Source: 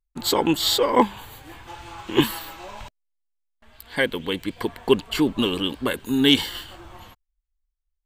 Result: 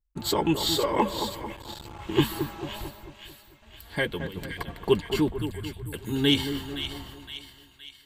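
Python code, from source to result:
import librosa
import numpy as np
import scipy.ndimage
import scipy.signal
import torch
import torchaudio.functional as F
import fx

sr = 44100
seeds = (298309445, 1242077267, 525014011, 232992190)

y = fx.dynamic_eq(x, sr, hz=280.0, q=0.74, threshold_db=-32.0, ratio=4.0, max_db=-5)
y = fx.brickwall_bandstop(y, sr, low_hz=160.0, high_hz=7200.0, at=(5.28, 5.93))
y = fx.low_shelf(y, sr, hz=450.0, db=9.0)
y = fx.notch_comb(y, sr, f0_hz=250.0)
y = fx.over_compress(y, sr, threshold_db=-30.0, ratio=-0.5, at=(4.2, 4.72))
y = fx.echo_split(y, sr, split_hz=1600.0, low_ms=222, high_ms=517, feedback_pct=52, wet_db=-8.5)
y = fx.transformer_sat(y, sr, knee_hz=400.0, at=(1.56, 2.02))
y = y * 10.0 ** (-4.5 / 20.0)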